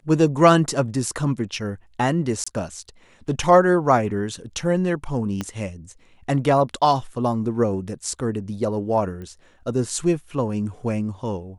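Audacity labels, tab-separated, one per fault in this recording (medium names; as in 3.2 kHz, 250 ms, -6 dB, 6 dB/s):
2.440000	2.460000	dropout 25 ms
5.410000	5.410000	pop -13 dBFS
9.220000	9.220000	pop -26 dBFS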